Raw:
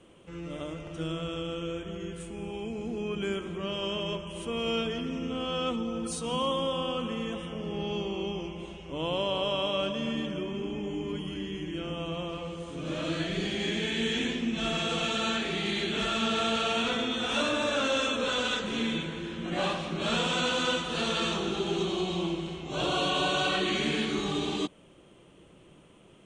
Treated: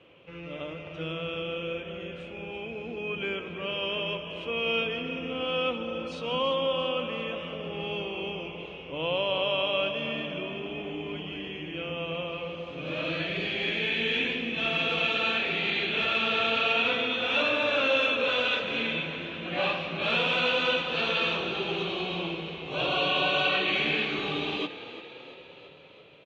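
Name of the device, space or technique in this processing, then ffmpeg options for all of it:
frequency-shifting delay pedal into a guitar cabinet: -filter_complex "[0:a]asplit=8[s0][s1][s2][s3][s4][s5][s6][s7];[s1]adelay=340,afreqshift=32,volume=0.2[s8];[s2]adelay=680,afreqshift=64,volume=0.122[s9];[s3]adelay=1020,afreqshift=96,volume=0.0741[s10];[s4]adelay=1360,afreqshift=128,volume=0.0452[s11];[s5]adelay=1700,afreqshift=160,volume=0.0275[s12];[s6]adelay=2040,afreqshift=192,volume=0.0168[s13];[s7]adelay=2380,afreqshift=224,volume=0.0102[s14];[s0][s8][s9][s10][s11][s12][s13][s14]amix=inputs=8:normalize=0,highpass=95,equalizer=f=210:t=q:w=4:g=-9,equalizer=f=350:t=q:w=4:g=-5,equalizer=f=520:t=q:w=4:g=4,equalizer=f=2500:t=q:w=4:g=10,lowpass=f=4300:w=0.5412,lowpass=f=4300:w=1.3066"

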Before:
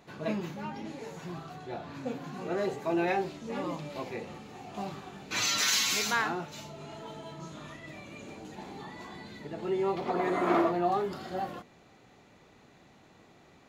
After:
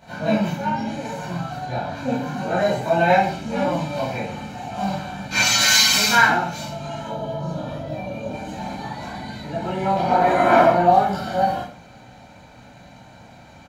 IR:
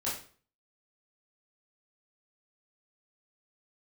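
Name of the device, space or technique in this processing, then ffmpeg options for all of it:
microphone above a desk: -filter_complex "[0:a]asettb=1/sr,asplit=3[s0][s1][s2];[s0]atrim=end=7.074[s3];[s1]atrim=start=7.07:end=8.33,asetpts=PTS-STARTPTS,afade=t=in:d=0.004:c=qsin,afade=t=out:st=1.256:d=0.004:c=qsin,equalizer=f=125:t=o:w=1:g=3,equalizer=f=500:t=o:w=1:g=9,equalizer=f=2000:t=o:w=1:g=-9,equalizer=f=8000:t=o:w=1:g=-11[s4];[s2]atrim=start=8.326[s5];[s3][s4]acrossfade=d=0.004:c1=hsin:c2=qsin[s6];[s6][s5]acrossfade=d=0.004:c1=qsin:c2=hsin,aecho=1:1:1.3:0.67[s7];[1:a]atrim=start_sample=2205[s8];[s7][s8]afir=irnorm=-1:irlink=0,volume=2.11"

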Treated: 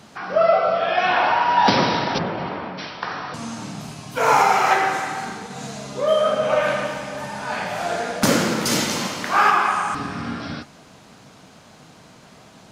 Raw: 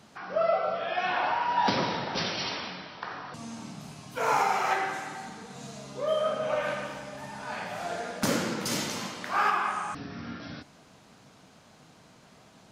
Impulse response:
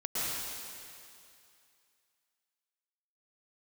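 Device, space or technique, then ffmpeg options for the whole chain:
keyed gated reverb: -filter_complex "[0:a]asplit=3[s0][s1][s2];[1:a]atrim=start_sample=2205[s3];[s1][s3]afir=irnorm=-1:irlink=0[s4];[s2]apad=whole_len=560512[s5];[s4][s5]sidechaingate=range=0.0224:threshold=0.00708:ratio=16:detection=peak,volume=0.141[s6];[s0][s6]amix=inputs=2:normalize=0,asplit=3[s7][s8][s9];[s7]afade=t=out:st=2.17:d=0.02[s10];[s8]lowpass=1200,afade=t=in:st=2.17:d=0.02,afade=t=out:st=2.77:d=0.02[s11];[s9]afade=t=in:st=2.77:d=0.02[s12];[s10][s11][s12]amix=inputs=3:normalize=0,volume=2.66"

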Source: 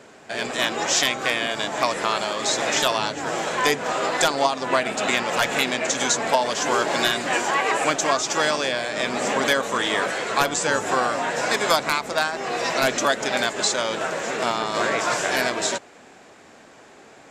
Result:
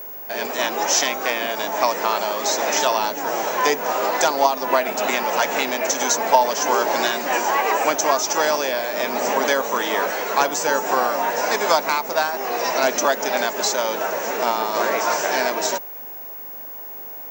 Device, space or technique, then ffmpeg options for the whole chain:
old television with a line whistle: -af "highpass=f=190:w=0.5412,highpass=f=190:w=1.3066,equalizer=f=430:t=q:w=4:g=3,equalizer=f=610:t=q:w=4:g=4,equalizer=f=900:t=q:w=4:g=8,equalizer=f=3500:t=q:w=4:g=-4,equalizer=f=5900:t=q:w=4:g=8,lowpass=f=7300:w=0.5412,lowpass=f=7300:w=1.3066,aeval=exprs='val(0)+0.0282*sin(2*PI*15625*n/s)':c=same,volume=0.891"

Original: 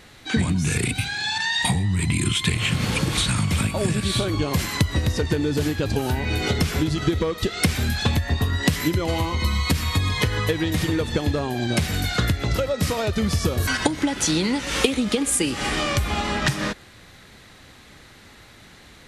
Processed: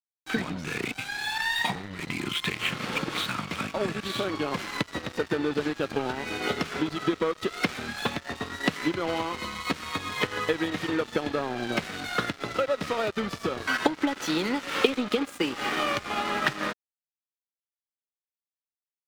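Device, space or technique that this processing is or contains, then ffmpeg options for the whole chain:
pocket radio on a weak battery: -af "highpass=270,lowpass=3300,aeval=exprs='sgn(val(0))*max(abs(val(0))-0.0178,0)':c=same,equalizer=f=1300:t=o:w=0.25:g=5.5"

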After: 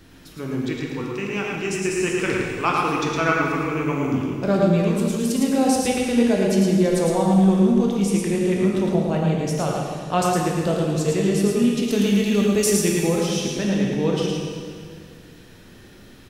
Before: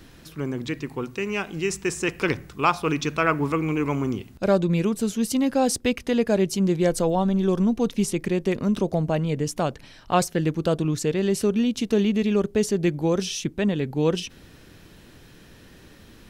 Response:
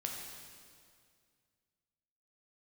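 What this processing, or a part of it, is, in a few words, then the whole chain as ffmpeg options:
stairwell: -filter_complex "[0:a]asettb=1/sr,asplit=3[s0][s1][s2];[s0]atrim=end=11.834[s3];[s1]atrim=start=11.83:end=13.07,asetpts=PTS-STARTPTS,afade=t=in:d=0.004:c=qsin,afade=t=out:st=1.236:d=0.004:c=qsin,aemphasis=mode=production:type=75kf[s4];[s2]atrim=start=13.066[s5];[s3][s4]acrossfade=d=0.004:c1=hsin:c2=qsin[s6];[s6][s5]acrossfade=d=0.004:c1=qsin:c2=hsin[s7];[1:a]atrim=start_sample=2205[s8];[s7][s8]afir=irnorm=-1:irlink=0,aecho=1:1:110:0.668"

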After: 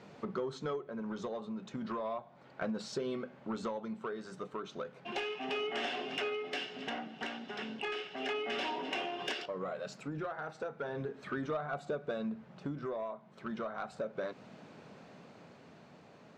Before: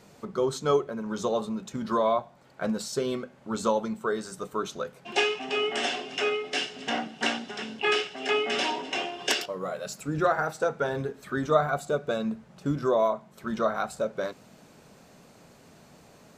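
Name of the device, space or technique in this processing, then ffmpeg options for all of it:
AM radio: -af "highpass=110,lowpass=3500,acompressor=threshold=0.0224:ratio=6,asoftclip=type=tanh:threshold=0.0447,tremolo=f=0.34:d=0.35,volume=1.12"

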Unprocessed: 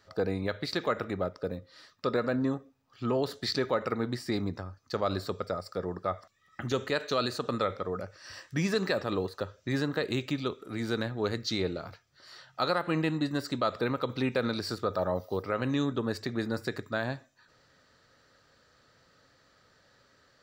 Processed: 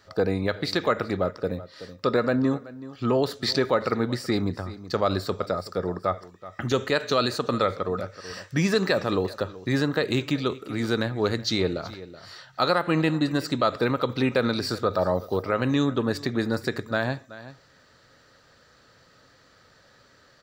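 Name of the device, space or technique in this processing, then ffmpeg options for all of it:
ducked delay: -filter_complex "[0:a]asplit=3[s0][s1][s2];[s1]adelay=377,volume=0.376[s3];[s2]apad=whole_len=917518[s4];[s3][s4]sidechaincompress=threshold=0.0178:ratio=8:attack=8.1:release=1040[s5];[s0][s5]amix=inputs=2:normalize=0,volume=2"

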